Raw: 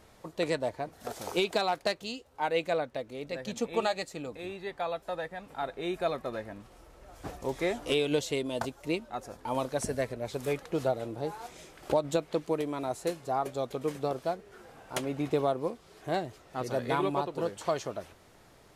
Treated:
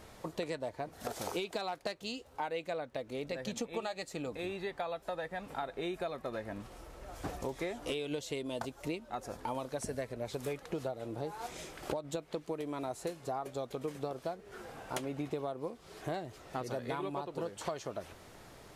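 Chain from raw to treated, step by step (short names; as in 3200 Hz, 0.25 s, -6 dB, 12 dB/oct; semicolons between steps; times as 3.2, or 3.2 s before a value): compressor 6:1, threshold -39 dBFS, peak gain reduction 16.5 dB; gain +4 dB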